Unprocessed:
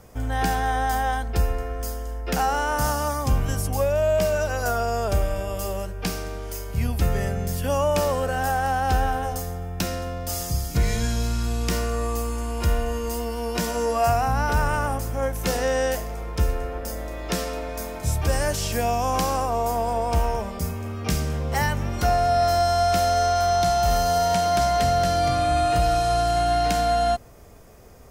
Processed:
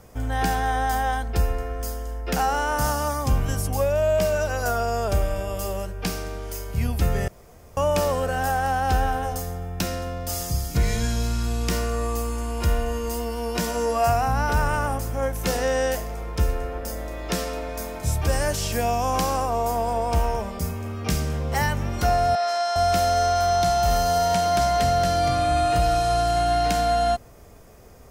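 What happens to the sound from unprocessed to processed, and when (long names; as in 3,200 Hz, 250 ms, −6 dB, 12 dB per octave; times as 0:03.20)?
0:07.28–0:07.77: fill with room tone
0:22.35–0:22.76: band-pass filter 750–6,400 Hz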